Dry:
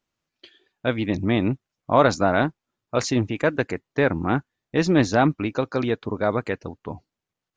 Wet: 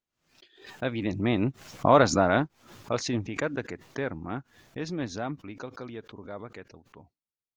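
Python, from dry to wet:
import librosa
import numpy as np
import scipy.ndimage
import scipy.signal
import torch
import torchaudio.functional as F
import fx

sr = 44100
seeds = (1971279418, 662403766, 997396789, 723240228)

y = fx.doppler_pass(x, sr, speed_mps=11, closest_m=7.9, pass_at_s=1.95)
y = fx.pre_swell(y, sr, db_per_s=110.0)
y = y * 10.0 ** (-2.0 / 20.0)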